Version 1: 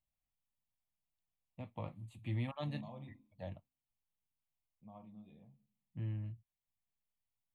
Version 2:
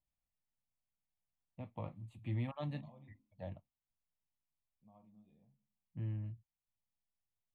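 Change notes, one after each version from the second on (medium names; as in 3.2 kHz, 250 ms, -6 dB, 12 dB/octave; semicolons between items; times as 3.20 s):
second voice -9.0 dB; master: add treble shelf 3 kHz -8.5 dB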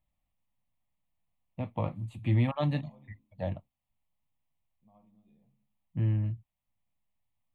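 first voice +12.0 dB; second voice: send +7.5 dB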